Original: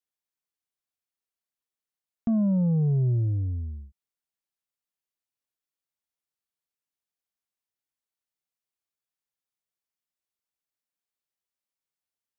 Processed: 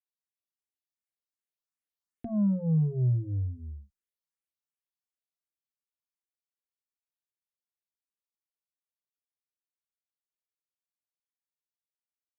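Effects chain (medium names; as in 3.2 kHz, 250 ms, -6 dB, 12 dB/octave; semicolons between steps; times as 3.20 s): Doppler pass-by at 2.85 s, 5 m/s, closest 4.9 m; band-stop 780 Hz, Q 12; barber-pole phaser +2.7 Hz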